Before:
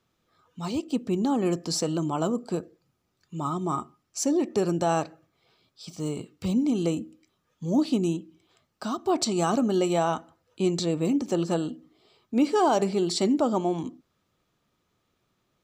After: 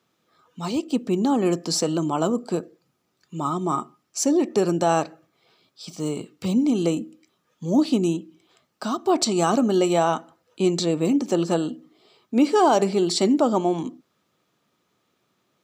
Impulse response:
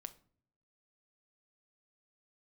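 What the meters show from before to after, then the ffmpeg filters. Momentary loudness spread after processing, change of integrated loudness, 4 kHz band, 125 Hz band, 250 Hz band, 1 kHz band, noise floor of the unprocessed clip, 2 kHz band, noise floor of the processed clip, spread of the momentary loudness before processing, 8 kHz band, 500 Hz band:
12 LU, +4.0 dB, +4.5 dB, +2.0 dB, +4.0 dB, +4.5 dB, -75 dBFS, +4.5 dB, -72 dBFS, 11 LU, +4.5 dB, +4.5 dB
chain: -af "highpass=160,volume=4.5dB"

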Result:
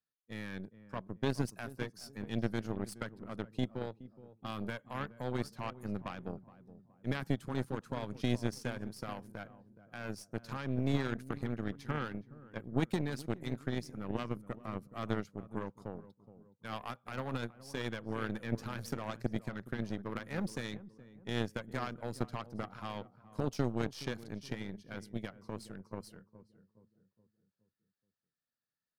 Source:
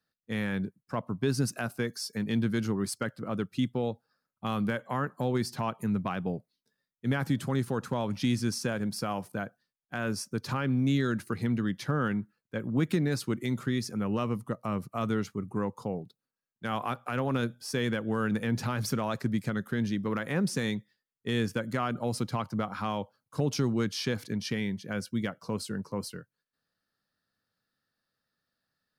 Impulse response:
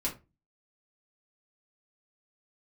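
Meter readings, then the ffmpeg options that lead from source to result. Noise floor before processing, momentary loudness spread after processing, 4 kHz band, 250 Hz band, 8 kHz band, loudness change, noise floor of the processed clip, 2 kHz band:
under -85 dBFS, 12 LU, -8.5 dB, -8.5 dB, -12.5 dB, -8.0 dB, under -85 dBFS, -7.5 dB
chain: -filter_complex "[0:a]asplit=2[a][b];[b]adelay=420,lowpass=f=900:p=1,volume=-10dB,asplit=2[c][d];[d]adelay=420,lowpass=f=900:p=1,volume=0.49,asplit=2[e][f];[f]adelay=420,lowpass=f=900:p=1,volume=0.49,asplit=2[g][h];[h]adelay=420,lowpass=f=900:p=1,volume=0.49,asplit=2[i][j];[j]adelay=420,lowpass=f=900:p=1,volume=0.49[k];[a][c][e][g][i][k]amix=inputs=6:normalize=0,aeval=exprs='0.168*(cos(1*acos(clip(val(0)/0.168,-1,1)))-cos(1*PI/2))+0.0237*(cos(2*acos(clip(val(0)/0.168,-1,1)))-cos(2*PI/2))+0.0422*(cos(3*acos(clip(val(0)/0.168,-1,1)))-cos(3*PI/2))+0.00211*(cos(6*acos(clip(val(0)/0.168,-1,1)))-cos(6*PI/2))+0.000944*(cos(7*acos(clip(val(0)/0.168,-1,1)))-cos(7*PI/2))':c=same,volume=-1.5dB"

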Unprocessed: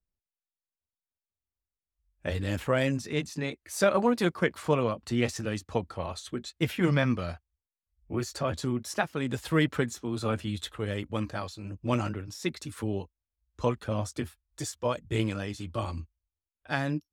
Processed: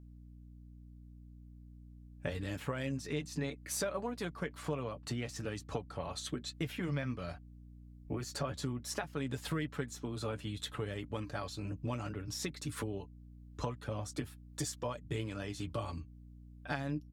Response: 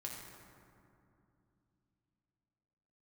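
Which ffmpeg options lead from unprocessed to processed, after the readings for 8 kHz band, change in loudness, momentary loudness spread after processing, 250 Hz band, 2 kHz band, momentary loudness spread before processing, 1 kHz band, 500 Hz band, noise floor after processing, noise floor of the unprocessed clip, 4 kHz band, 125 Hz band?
-3.0 dB, -9.0 dB, 19 LU, -9.5 dB, -10.0 dB, 11 LU, -9.5 dB, -10.5 dB, -54 dBFS, under -85 dBFS, -6.0 dB, -7.5 dB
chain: -af "acompressor=threshold=-39dB:ratio=6,aecho=1:1:7:0.4,aeval=exprs='val(0)+0.00178*(sin(2*PI*60*n/s)+sin(2*PI*2*60*n/s)/2+sin(2*PI*3*60*n/s)/3+sin(2*PI*4*60*n/s)/4+sin(2*PI*5*60*n/s)/5)':c=same,volume=3dB"

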